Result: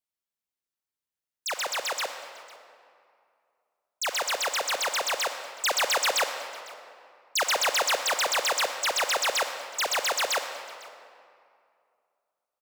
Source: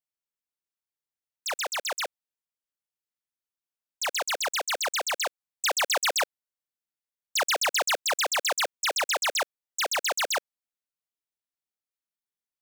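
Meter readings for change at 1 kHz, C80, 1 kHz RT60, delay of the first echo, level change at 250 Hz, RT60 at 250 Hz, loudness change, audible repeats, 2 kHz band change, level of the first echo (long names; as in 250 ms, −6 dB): +1.0 dB, 7.5 dB, 2.3 s, 502 ms, 0.0 dB, 2.3 s, +0.5 dB, 1, +0.5 dB, −21.0 dB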